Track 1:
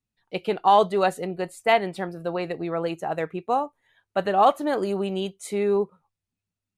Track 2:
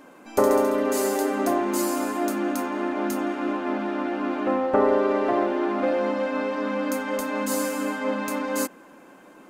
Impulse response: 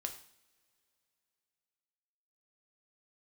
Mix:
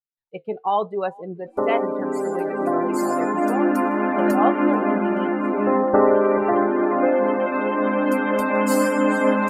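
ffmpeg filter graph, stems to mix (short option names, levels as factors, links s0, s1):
-filter_complex "[0:a]flanger=delay=7.2:depth=6.7:regen=68:speed=0.96:shape=sinusoidal,volume=1,asplit=3[s0][s1][s2];[s1]volume=0.0841[s3];[s2]volume=0.075[s4];[1:a]bandreject=f=6400:w=9.6,dynaudnorm=f=840:g=3:m=4.73,adelay=1200,volume=0.501,asplit=3[s5][s6][s7];[s6]volume=0.447[s8];[s7]volume=0.473[s9];[2:a]atrim=start_sample=2205[s10];[s3][s8]amix=inputs=2:normalize=0[s11];[s11][s10]afir=irnorm=-1:irlink=0[s12];[s4][s9]amix=inputs=2:normalize=0,aecho=0:1:433|866|1299|1732|2165|2598|3031|3464|3897:1|0.58|0.336|0.195|0.113|0.0656|0.0381|0.0221|0.0128[s13];[s0][s5][s12][s13]amix=inputs=4:normalize=0,afftdn=nr=24:nf=-30,highshelf=f=6000:g=-7.5"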